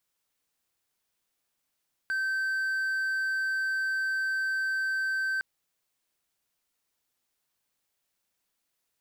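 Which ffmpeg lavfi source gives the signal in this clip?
-f lavfi -i "aevalsrc='0.0596*(1-4*abs(mod(1550*t+0.25,1)-0.5))':d=3.31:s=44100"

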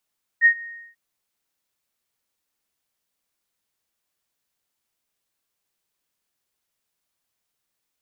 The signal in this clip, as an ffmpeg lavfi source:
-f lavfi -i "aevalsrc='0.355*sin(2*PI*1860*t)':d=0.542:s=44100,afade=t=in:d=0.045,afade=t=out:st=0.045:d=0.081:silence=0.0708,afade=t=out:st=0.21:d=0.332"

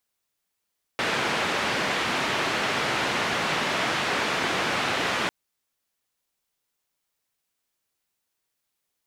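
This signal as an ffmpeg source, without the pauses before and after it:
-f lavfi -i "anoisesrc=c=white:d=4.3:r=44100:seed=1,highpass=f=130,lowpass=f=2400,volume=-11.7dB"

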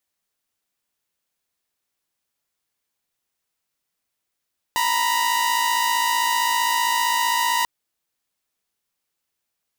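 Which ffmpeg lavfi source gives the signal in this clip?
-f lavfi -i "aevalsrc='0.112*((2*mod(932.33*t,1)-1)+(2*mod(987.77*t,1)-1))':d=2.89:s=44100"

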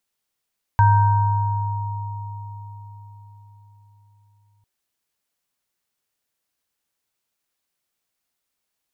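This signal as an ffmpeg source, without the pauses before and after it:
-f lavfi -i "aevalsrc='0.251*pow(10,-3*t/4.92)*sin(2*PI*103*t)+0.2*pow(10,-3*t/4.04)*sin(2*PI*940*t)+0.0501*pow(10,-3*t/1.31)*sin(2*PI*1560*t)':d=3.85:s=44100"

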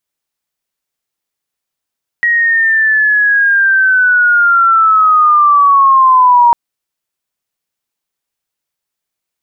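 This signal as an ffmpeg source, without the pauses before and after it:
-f lavfi -i "aevalsrc='pow(10,(-8+4.5*t/4.3)/20)*sin(2*PI*(1900*t-960*t*t/(2*4.3)))':d=4.3:s=44100"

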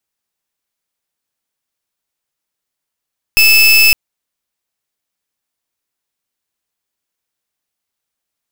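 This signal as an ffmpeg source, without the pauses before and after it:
-f lavfi -i "aevalsrc='0.422*(2*lt(mod(2620*t,1),0.3)-1)':d=0.56:s=44100"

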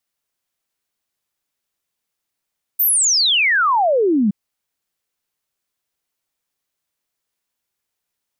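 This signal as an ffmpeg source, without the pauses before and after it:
-f lavfi -i "aevalsrc='0.237*clip(min(t,1.52-t)/0.01,0,1)*sin(2*PI*15000*1.52/log(190/15000)*(exp(log(190/15000)*t/1.52)-1))':d=1.52:s=44100"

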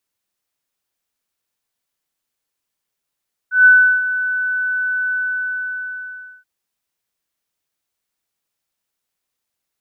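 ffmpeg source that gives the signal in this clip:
-f lavfi -i "aevalsrc='0.596*sin(2*PI*1500*t)':d=2.93:s=44100,afade=t=in:d=0.143,afade=t=out:st=0.143:d=0.36:silence=0.237,afade=t=out:st=1.61:d=1.32"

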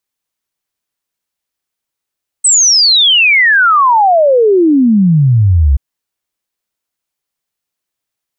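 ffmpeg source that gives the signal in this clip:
-f lavfi -i "aevalsrc='0.562*clip(min(t,3.33-t)/0.01,0,1)*sin(2*PI*8300*3.33/log(64/8300)*(exp(log(64/8300)*t/3.33)-1))':d=3.33:s=44100"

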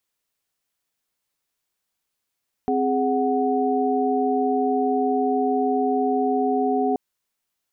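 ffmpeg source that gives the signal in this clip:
-f lavfi -i "aevalsrc='0.0708*(sin(2*PI*261.63*t)+sin(2*PI*415.3*t)+sin(2*PI*739.99*t))':d=4.28:s=44100"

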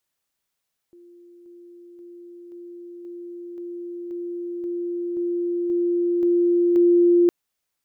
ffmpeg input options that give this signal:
-f lavfi -i "aevalsrc='pow(10,(-45.5+3*floor(t/0.53))/20)*sin(2*PI*348*t)':d=6.36:s=44100"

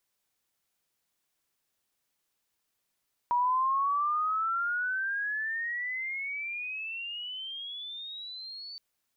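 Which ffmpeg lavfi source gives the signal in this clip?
-f lavfi -i "aevalsrc='pow(10,(-23-17*t/5.47)/20)*sin(2*PI*957*5.47/(27*log(2)/12)*(exp(27*log(2)/12*t/5.47)-1))':d=5.47:s=44100"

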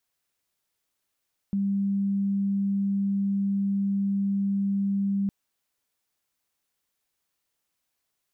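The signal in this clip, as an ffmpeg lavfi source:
-f lavfi -i "sine=f=198:d=3.76:r=44100,volume=-4.44dB"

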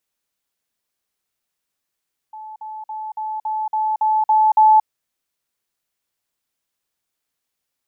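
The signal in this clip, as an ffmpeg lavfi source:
-f lavfi -i "aevalsrc='pow(10,(-32+3*floor(t/0.28))/20)*sin(2*PI*866*t)*clip(min(mod(t,0.28),0.23-mod(t,0.28))/0.005,0,1)':d=2.52:s=44100"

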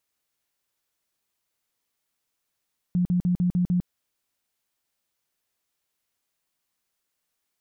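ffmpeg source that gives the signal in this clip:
-f lavfi -i "aevalsrc='0.112*sin(2*PI*178*mod(t,0.15))*lt(mod(t,0.15),18/178)':d=0.9:s=44100"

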